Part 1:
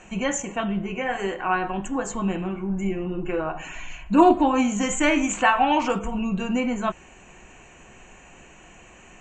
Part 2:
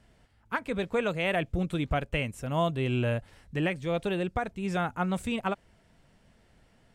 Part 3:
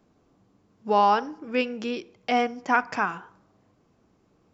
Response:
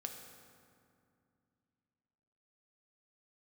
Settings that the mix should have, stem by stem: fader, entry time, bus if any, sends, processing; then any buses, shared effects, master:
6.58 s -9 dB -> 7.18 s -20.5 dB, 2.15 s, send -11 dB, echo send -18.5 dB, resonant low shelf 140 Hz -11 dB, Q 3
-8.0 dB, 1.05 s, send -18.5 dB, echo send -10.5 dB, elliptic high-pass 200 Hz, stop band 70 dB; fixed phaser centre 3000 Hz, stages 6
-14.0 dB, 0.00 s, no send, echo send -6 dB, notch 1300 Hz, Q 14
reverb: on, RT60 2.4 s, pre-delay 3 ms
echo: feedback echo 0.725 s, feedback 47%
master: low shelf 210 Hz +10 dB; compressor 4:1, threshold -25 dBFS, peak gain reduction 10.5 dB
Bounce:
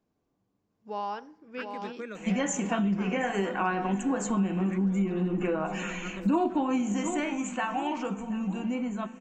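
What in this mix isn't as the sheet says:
stem 1 -9.0 dB -> -1.0 dB; master: missing low shelf 210 Hz +10 dB

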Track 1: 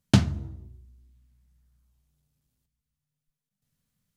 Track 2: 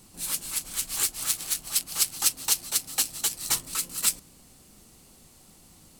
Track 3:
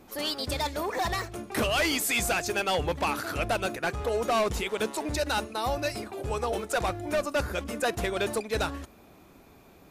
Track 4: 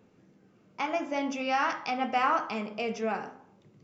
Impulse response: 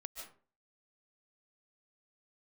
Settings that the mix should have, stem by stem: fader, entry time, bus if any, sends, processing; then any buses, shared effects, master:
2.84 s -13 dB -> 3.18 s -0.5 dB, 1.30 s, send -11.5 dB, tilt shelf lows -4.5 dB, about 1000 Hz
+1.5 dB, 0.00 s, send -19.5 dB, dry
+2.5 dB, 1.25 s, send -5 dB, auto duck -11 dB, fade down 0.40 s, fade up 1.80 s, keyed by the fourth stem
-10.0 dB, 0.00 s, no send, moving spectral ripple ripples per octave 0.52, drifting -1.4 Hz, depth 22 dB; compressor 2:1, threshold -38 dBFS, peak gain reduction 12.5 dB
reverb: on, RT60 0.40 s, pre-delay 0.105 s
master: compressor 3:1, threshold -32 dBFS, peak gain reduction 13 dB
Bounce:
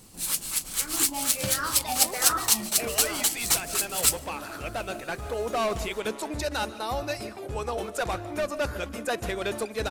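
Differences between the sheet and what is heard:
stem 3 +2.5 dB -> -3.5 dB; stem 4: missing compressor 2:1, threshold -38 dBFS, peak gain reduction 12.5 dB; master: missing compressor 3:1, threshold -32 dBFS, peak gain reduction 13 dB

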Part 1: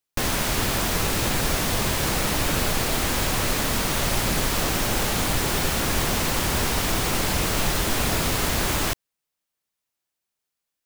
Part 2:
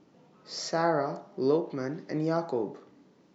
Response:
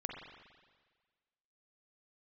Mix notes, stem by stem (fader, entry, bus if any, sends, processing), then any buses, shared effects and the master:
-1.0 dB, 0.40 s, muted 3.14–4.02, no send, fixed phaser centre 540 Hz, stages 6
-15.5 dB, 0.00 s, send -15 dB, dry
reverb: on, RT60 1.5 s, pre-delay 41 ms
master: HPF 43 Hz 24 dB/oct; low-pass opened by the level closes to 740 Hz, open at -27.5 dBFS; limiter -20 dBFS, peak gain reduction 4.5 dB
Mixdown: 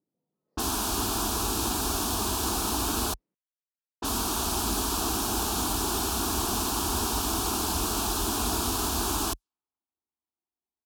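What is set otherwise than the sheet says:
stem 2 -15.5 dB -> -27.0 dB; master: missing limiter -20 dBFS, peak gain reduction 4.5 dB

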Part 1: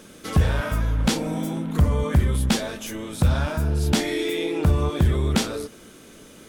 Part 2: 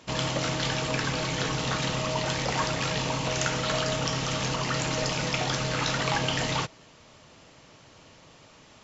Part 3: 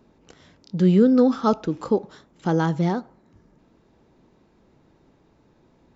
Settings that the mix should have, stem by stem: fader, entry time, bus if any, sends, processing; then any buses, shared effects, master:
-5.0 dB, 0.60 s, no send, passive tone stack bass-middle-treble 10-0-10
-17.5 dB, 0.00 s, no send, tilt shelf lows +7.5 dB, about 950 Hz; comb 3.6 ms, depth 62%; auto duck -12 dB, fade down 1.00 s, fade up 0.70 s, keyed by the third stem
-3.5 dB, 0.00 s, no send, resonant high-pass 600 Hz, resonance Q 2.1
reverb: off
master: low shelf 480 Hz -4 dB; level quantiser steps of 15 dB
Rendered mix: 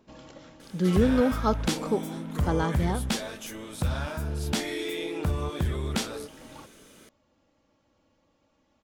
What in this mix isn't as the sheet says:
stem 1: missing passive tone stack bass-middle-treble 10-0-10; stem 3: missing resonant high-pass 600 Hz, resonance Q 2.1; master: missing level quantiser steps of 15 dB

